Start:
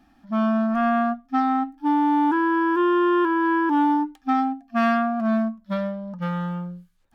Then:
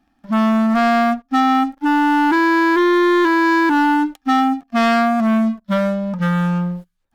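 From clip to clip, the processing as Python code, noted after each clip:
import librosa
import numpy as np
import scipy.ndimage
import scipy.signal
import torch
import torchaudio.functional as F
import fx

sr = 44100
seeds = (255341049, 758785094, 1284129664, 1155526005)

y = fx.leveller(x, sr, passes=3)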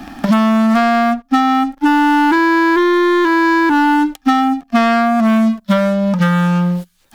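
y = fx.band_squash(x, sr, depth_pct=100)
y = y * librosa.db_to_amplitude(2.0)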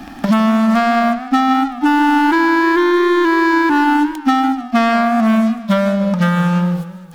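y = fx.echo_warbled(x, sr, ms=151, feedback_pct=50, rate_hz=2.8, cents=159, wet_db=-14.0)
y = y * librosa.db_to_amplitude(-1.0)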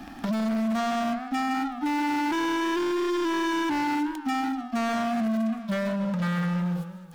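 y = np.clip(10.0 ** (15.5 / 20.0) * x, -1.0, 1.0) / 10.0 ** (15.5 / 20.0)
y = y * librosa.db_to_amplitude(-8.5)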